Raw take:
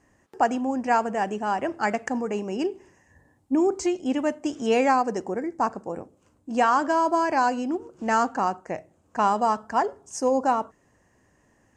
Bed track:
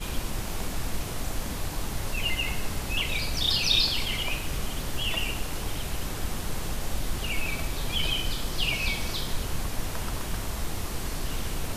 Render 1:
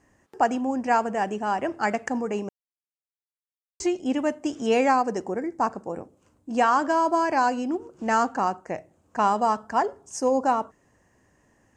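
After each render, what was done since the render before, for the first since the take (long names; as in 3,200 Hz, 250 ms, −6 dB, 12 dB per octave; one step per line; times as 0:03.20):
0:02.49–0:03.80: silence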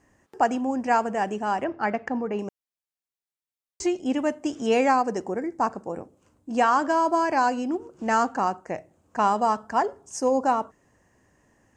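0:01.64–0:02.39: high-frequency loss of the air 210 metres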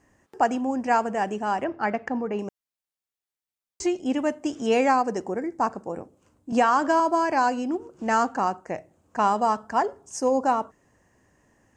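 0:06.52–0:07.00: multiband upward and downward compressor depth 70%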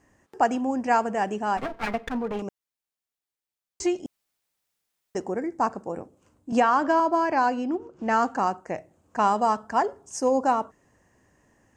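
0:01.57–0:02.42: lower of the sound and its delayed copy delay 4.3 ms
0:04.06–0:05.15: fill with room tone
0:06.60–0:08.23: high-frequency loss of the air 99 metres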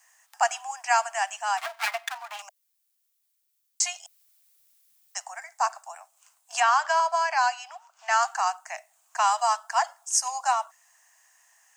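Butterworth high-pass 650 Hz 96 dB per octave
spectral tilt +4.5 dB per octave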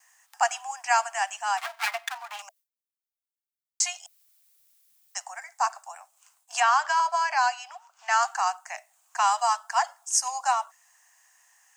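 notch filter 650 Hz, Q 13
noise gate with hold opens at −56 dBFS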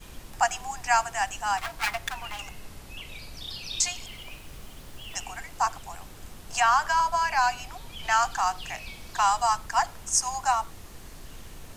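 mix in bed track −13 dB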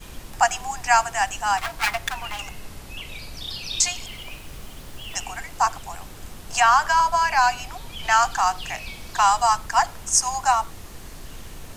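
level +5 dB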